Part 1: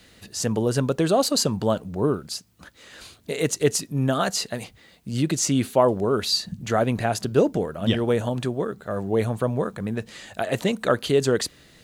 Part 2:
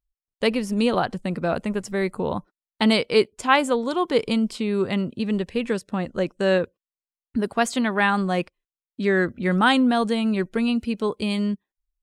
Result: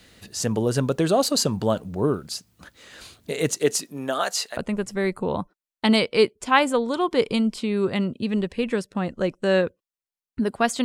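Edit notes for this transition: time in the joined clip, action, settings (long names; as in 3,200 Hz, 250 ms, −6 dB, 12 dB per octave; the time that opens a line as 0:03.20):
part 1
0:03.53–0:04.57: high-pass filter 180 Hz → 770 Hz
0:04.57: continue with part 2 from 0:01.54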